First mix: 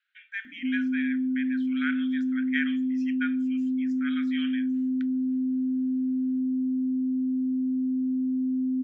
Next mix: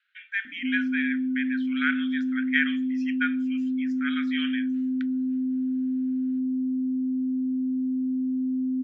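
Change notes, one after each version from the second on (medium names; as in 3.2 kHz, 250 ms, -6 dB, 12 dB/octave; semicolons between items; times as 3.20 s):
speech +6.0 dB; master: add low-pass 5.4 kHz 12 dB/octave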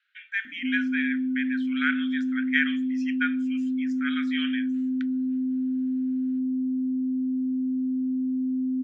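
master: remove low-pass 5.4 kHz 12 dB/octave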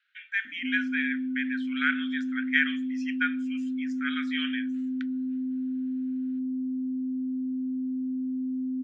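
background -4.0 dB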